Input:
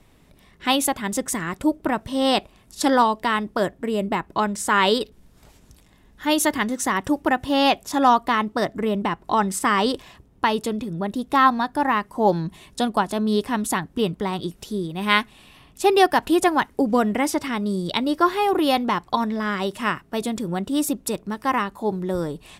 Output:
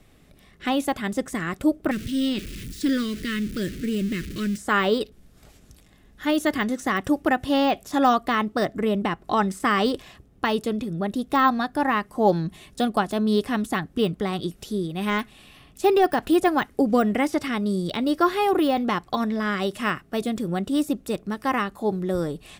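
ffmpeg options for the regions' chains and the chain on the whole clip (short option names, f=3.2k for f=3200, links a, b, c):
-filter_complex "[0:a]asettb=1/sr,asplit=3[a][b][c];[a]atrim=end=1.914[d];[b]atrim=start=1.91:end=4.58,asetpts=PTS-STARTPTS,afade=t=in:d=0.004:c=qsin,afade=t=out:st=2.666:d=0.004:c=qsin,aeval=exprs='val(0)+0.5*0.0398*sgn(val(0))':c=same,asuperstop=centerf=820:order=4:qfactor=0.51[e];[c]atrim=start=4.576[f];[d][e]acrossfade=d=0.004:c1=hsin:c2=qsin[g];[g][f]acrossfade=d=0.004:c1=qsin:c2=hsin,bandreject=f=950:w=5.4,deesser=0.7"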